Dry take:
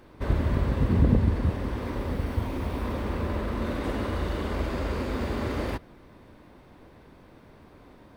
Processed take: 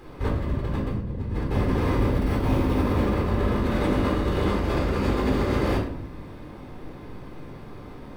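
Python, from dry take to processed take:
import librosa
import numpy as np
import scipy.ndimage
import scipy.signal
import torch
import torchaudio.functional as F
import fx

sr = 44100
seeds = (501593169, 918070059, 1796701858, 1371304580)

y = fx.over_compress(x, sr, threshold_db=-31.0, ratio=-1.0)
y = fx.room_shoebox(y, sr, seeds[0], volume_m3=1000.0, walls='furnished', distance_m=4.0)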